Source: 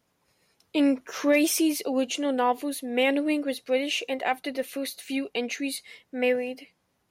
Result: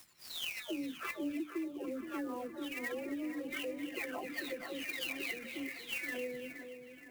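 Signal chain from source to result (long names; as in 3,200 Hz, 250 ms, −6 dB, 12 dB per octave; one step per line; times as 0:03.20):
every frequency bin delayed by itself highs early, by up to 886 ms
mains-hum notches 60/120/180/240/300 Hz
treble cut that deepens with the level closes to 580 Hz, closed at −27 dBFS
dynamic equaliser 1,900 Hz, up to +7 dB, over −54 dBFS, Q 1.5
harmonic and percussive parts rebalanced harmonic −5 dB
flat-topped bell 640 Hz −8.5 dB 1.2 octaves
downward compressor, threshold −41 dBFS, peak gain reduction 13.5 dB
echo with a time of its own for lows and highs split 2,100 Hz, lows 471 ms, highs 264 ms, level −9 dB
converter with an unsteady clock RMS 0.021 ms
level +4 dB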